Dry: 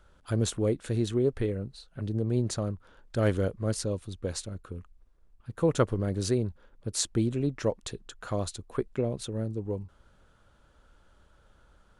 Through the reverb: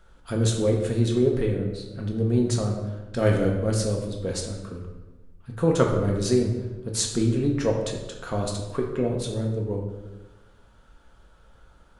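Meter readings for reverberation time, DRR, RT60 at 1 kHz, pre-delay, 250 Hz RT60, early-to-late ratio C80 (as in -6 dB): 1.1 s, -0.5 dB, 1.1 s, 4 ms, 1.3 s, 7.0 dB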